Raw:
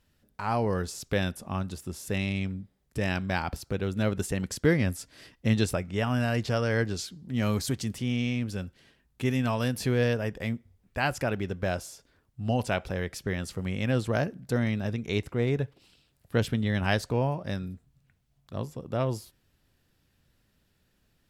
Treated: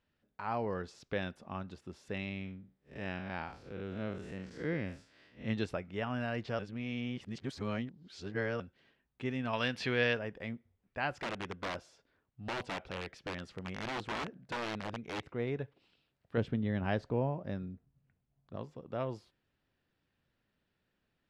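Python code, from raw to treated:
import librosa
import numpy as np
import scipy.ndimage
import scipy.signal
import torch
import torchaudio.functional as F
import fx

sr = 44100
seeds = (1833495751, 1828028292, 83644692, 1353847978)

y = fx.spec_blur(x, sr, span_ms=134.0, at=(2.29, 5.47), fade=0.02)
y = fx.peak_eq(y, sr, hz=3000.0, db=12.0, octaves=2.8, at=(9.53, 10.19))
y = fx.overflow_wrap(y, sr, gain_db=23.0, at=(11.22, 15.23))
y = fx.tilt_shelf(y, sr, db=5.5, hz=810.0, at=(16.37, 18.56))
y = fx.edit(y, sr, fx.reverse_span(start_s=6.59, length_s=2.01), tone=tone)
y = scipy.signal.sosfilt(scipy.signal.butter(2, 3200.0, 'lowpass', fs=sr, output='sos'), y)
y = fx.low_shelf(y, sr, hz=130.0, db=-11.0)
y = F.gain(torch.from_numpy(y), -6.5).numpy()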